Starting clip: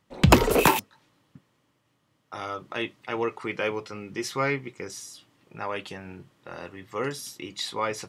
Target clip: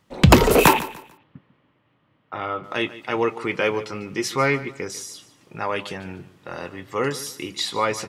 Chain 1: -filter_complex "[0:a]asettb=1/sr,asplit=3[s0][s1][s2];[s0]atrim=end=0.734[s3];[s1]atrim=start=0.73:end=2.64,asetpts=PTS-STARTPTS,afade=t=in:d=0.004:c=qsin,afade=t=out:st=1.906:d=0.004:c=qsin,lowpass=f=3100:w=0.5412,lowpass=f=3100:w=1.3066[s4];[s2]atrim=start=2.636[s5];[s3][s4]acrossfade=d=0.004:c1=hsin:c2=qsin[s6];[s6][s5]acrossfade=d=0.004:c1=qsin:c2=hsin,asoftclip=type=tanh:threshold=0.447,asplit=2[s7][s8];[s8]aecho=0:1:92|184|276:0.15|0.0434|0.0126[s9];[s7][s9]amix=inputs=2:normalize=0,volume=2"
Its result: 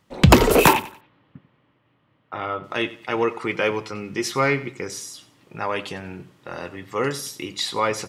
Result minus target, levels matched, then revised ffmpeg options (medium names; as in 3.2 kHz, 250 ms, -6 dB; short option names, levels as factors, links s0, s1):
echo 55 ms early
-filter_complex "[0:a]asettb=1/sr,asplit=3[s0][s1][s2];[s0]atrim=end=0.734[s3];[s1]atrim=start=0.73:end=2.64,asetpts=PTS-STARTPTS,afade=t=in:d=0.004:c=qsin,afade=t=out:st=1.906:d=0.004:c=qsin,lowpass=f=3100:w=0.5412,lowpass=f=3100:w=1.3066[s4];[s2]atrim=start=2.636[s5];[s3][s4]acrossfade=d=0.004:c1=hsin:c2=qsin[s6];[s6][s5]acrossfade=d=0.004:c1=qsin:c2=hsin,asoftclip=type=tanh:threshold=0.447,asplit=2[s7][s8];[s8]aecho=0:1:147|294|441:0.15|0.0434|0.0126[s9];[s7][s9]amix=inputs=2:normalize=0,volume=2"